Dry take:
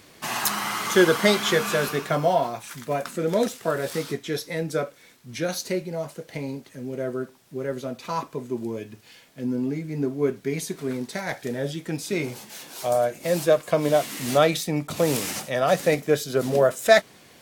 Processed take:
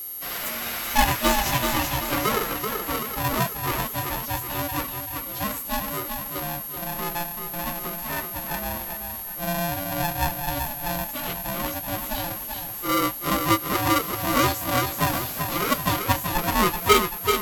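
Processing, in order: inharmonic rescaling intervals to 123%; thinning echo 0.383 s, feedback 53%, high-pass 210 Hz, level -5 dB; whine 12000 Hz -32 dBFS; polarity switched at an audio rate 430 Hz

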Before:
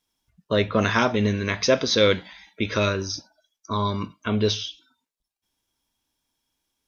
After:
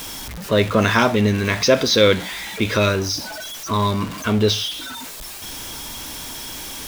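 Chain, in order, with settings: zero-crossing step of -29.5 dBFS; gain +3.5 dB

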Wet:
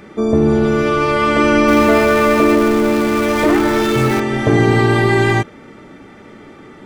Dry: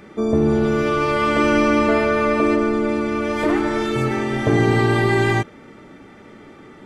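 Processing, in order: 1.68–4.2 zero-crossing step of -24 dBFS; gain +4 dB

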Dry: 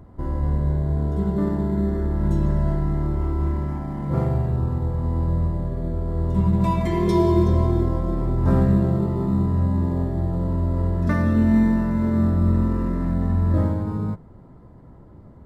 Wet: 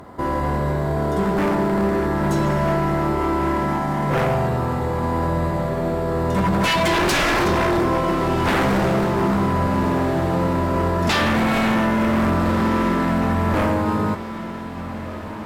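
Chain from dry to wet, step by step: HPF 1000 Hz 6 dB/oct; sine folder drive 15 dB, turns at -15.5 dBFS; diffused feedback echo 1.59 s, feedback 47%, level -12.5 dB

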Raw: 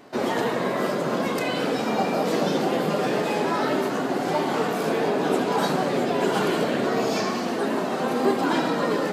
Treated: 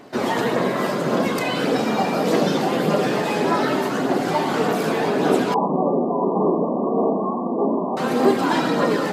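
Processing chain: phaser 1.7 Hz, delay 1.2 ms, feedback 26%; 5.54–7.97 brick-wall FIR band-pass 150–1200 Hz; gain +3 dB

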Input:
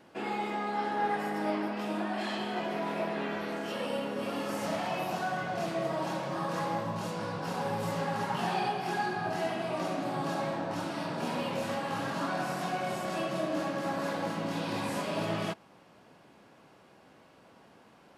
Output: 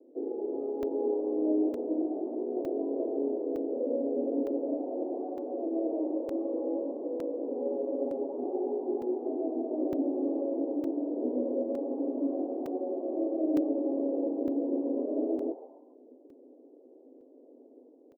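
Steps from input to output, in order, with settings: steep low-pass 510 Hz 36 dB/oct; AGC gain up to 3 dB; Chebyshev high-pass 250 Hz, order 8; on a send: frequency-shifting echo 0.138 s, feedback 32%, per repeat +120 Hz, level -16 dB; on the sum: crackling interface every 0.91 s, samples 128, zero, from 0.83; gain +6 dB

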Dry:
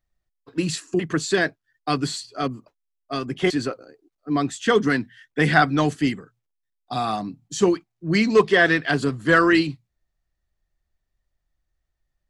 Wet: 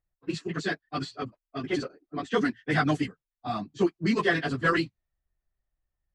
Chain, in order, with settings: plain phase-vocoder stretch 0.5×; low-pass opened by the level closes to 2100 Hz, open at -17.5 dBFS; gain -2.5 dB

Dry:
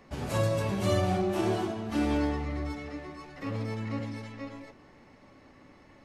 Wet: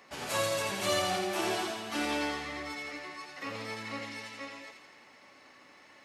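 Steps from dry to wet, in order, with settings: HPF 1300 Hz 6 dB/oct; on a send: thin delay 84 ms, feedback 63%, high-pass 1900 Hz, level -4 dB; on the sum: gain +5.5 dB

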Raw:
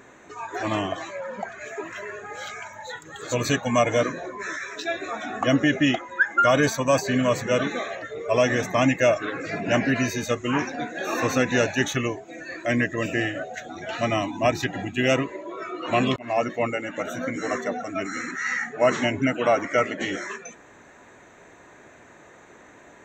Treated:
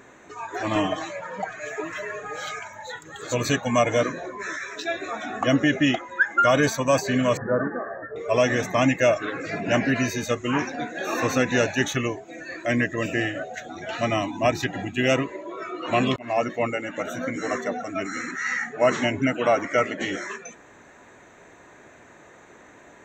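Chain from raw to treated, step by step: 0.75–2.59 comb 6.5 ms, depth 96%; 7.37–8.16 Chebyshev low-pass 1800 Hz, order 8

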